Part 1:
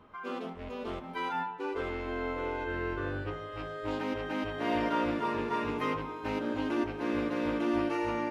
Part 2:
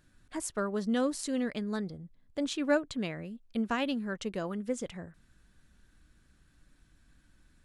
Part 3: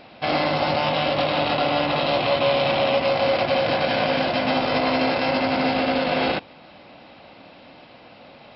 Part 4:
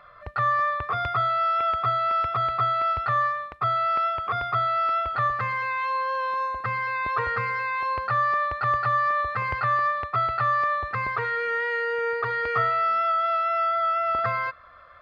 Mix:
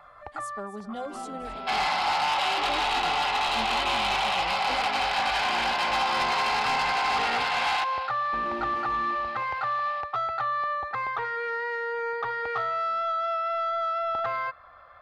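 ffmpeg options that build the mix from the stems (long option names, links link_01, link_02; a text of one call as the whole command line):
ffmpeg -i stem1.wav -i stem2.wav -i stem3.wav -i stem4.wav -filter_complex "[0:a]lowshelf=frequency=140:gain=12,aecho=1:1:5.1:0.65,adelay=850,volume=-9.5dB,asplit=3[link_01][link_02][link_03];[link_01]atrim=end=7.44,asetpts=PTS-STARTPTS,afade=type=out:start_time=7.436:duration=0.004:curve=hsin[link_04];[link_02]atrim=start=7.44:end=8.33,asetpts=PTS-STARTPTS,volume=0[link_05];[link_03]atrim=start=8.33,asetpts=PTS-STARTPTS,afade=type=in:duration=0.004:curve=hsin[link_06];[link_04][link_05][link_06]concat=n=3:v=0:a=1,asplit=2[link_07][link_08];[link_08]volume=-8.5dB[link_09];[1:a]asplit=2[link_10][link_11];[link_11]adelay=4.1,afreqshift=-0.63[link_12];[link_10][link_12]amix=inputs=2:normalize=1,volume=-5.5dB,asplit=3[link_13][link_14][link_15];[link_14]volume=-15.5dB[link_16];[2:a]highpass=frequency=1000:width=0.5412,highpass=frequency=1000:width=1.3066,acontrast=25,adelay=1450,volume=-4dB,asplit=2[link_17][link_18];[link_18]volume=-15dB[link_19];[3:a]acrossover=split=330|1500[link_20][link_21][link_22];[link_20]acompressor=threshold=-47dB:ratio=4[link_23];[link_21]acompressor=threshold=-25dB:ratio=4[link_24];[link_22]acompressor=threshold=-32dB:ratio=4[link_25];[link_23][link_24][link_25]amix=inputs=3:normalize=0,volume=-3dB[link_26];[link_15]apad=whole_len=662191[link_27];[link_26][link_27]sidechaincompress=threshold=-50dB:ratio=8:attack=16:release=1360[link_28];[link_09][link_16][link_19]amix=inputs=3:normalize=0,aecho=0:1:264:1[link_29];[link_07][link_13][link_17][link_28][link_29]amix=inputs=5:normalize=0,equalizer=frequency=810:width_type=o:width=0.38:gain=13,asoftclip=type=tanh:threshold=-20dB" out.wav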